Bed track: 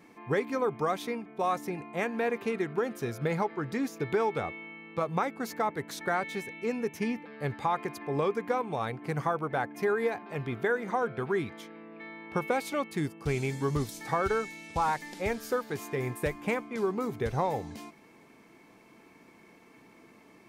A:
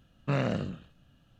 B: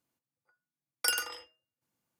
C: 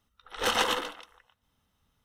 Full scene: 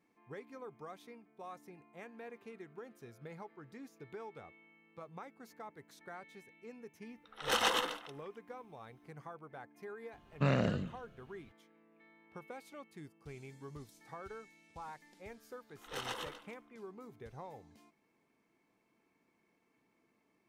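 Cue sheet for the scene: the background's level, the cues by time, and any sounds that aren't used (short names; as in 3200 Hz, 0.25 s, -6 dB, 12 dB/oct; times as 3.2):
bed track -19.5 dB
7.06 add C -4.5 dB + low shelf 130 Hz -6 dB
10.13 add A -2 dB
15.5 add C -15.5 dB
not used: B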